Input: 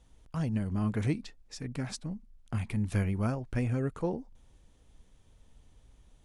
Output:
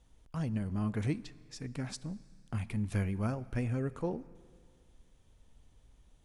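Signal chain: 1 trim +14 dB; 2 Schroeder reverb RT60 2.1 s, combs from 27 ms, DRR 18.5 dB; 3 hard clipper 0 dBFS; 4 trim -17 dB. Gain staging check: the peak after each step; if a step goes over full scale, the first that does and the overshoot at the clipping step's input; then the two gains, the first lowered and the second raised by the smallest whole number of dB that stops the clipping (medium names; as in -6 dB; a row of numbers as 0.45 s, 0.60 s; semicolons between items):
-3.5 dBFS, -3.5 dBFS, -3.5 dBFS, -20.5 dBFS; nothing clips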